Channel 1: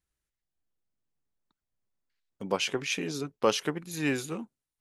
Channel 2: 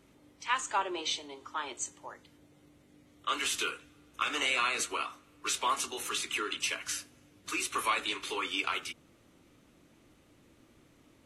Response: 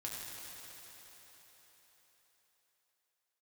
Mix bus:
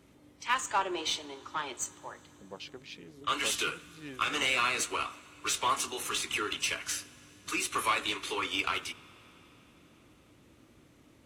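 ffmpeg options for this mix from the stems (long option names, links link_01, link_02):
-filter_complex "[0:a]afwtdn=0.01,aexciter=amount=1.8:drive=5.7:freq=3400,volume=-16.5dB[link_01];[1:a]aeval=exprs='0.158*(cos(1*acos(clip(val(0)/0.158,-1,1)))-cos(1*PI/2))+0.00562*(cos(8*acos(clip(val(0)/0.158,-1,1)))-cos(8*PI/2))':channel_layout=same,highpass=47,lowshelf=frequency=140:gain=4,volume=0.5dB,asplit=2[link_02][link_03];[link_03]volume=-18.5dB[link_04];[2:a]atrim=start_sample=2205[link_05];[link_04][link_05]afir=irnorm=-1:irlink=0[link_06];[link_01][link_02][link_06]amix=inputs=3:normalize=0"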